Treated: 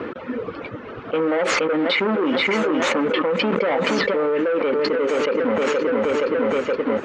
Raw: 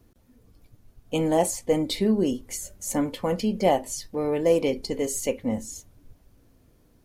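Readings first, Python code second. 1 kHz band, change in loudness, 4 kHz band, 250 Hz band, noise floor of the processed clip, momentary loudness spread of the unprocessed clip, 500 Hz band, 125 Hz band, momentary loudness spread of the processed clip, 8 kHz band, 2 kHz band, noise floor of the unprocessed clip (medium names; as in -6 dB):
+6.5 dB, +5.0 dB, +9.0 dB, +4.0 dB, -35 dBFS, 10 LU, +7.0 dB, -2.0 dB, 10 LU, -6.0 dB, +17.5 dB, -60 dBFS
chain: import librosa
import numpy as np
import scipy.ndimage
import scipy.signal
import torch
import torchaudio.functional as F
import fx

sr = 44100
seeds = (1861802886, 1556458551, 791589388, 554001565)

p1 = fx.dereverb_blind(x, sr, rt60_s=0.75)
p2 = fx.quant_dither(p1, sr, seeds[0], bits=6, dither='none')
p3 = p1 + (p2 * 10.0 ** (-4.0 / 20.0))
p4 = np.clip(p3, -10.0 ** (-20.0 / 20.0), 10.0 ** (-20.0 / 20.0))
p5 = fx.cabinet(p4, sr, low_hz=370.0, low_slope=12, high_hz=2600.0, hz=(490.0, 720.0, 1300.0), db=(5, -7, 6))
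p6 = p5 + fx.echo_feedback(p5, sr, ms=472, feedback_pct=47, wet_db=-15.0, dry=0)
p7 = fx.env_flatten(p6, sr, amount_pct=100)
y = p7 * 10.0 ** (-2.0 / 20.0)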